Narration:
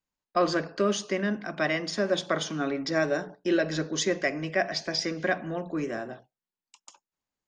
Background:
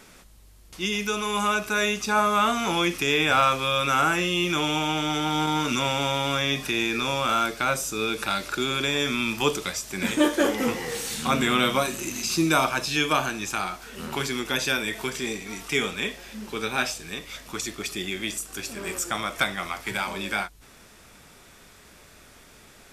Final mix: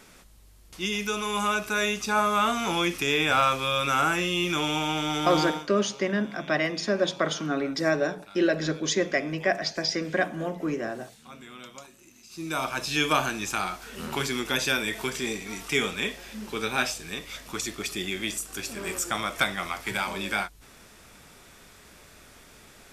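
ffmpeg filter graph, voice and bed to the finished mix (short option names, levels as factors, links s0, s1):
-filter_complex "[0:a]adelay=4900,volume=1.19[s0];[1:a]volume=10.6,afade=t=out:st=5.42:d=0.24:silence=0.0891251,afade=t=in:st=12.3:d=0.75:silence=0.0749894[s1];[s0][s1]amix=inputs=2:normalize=0"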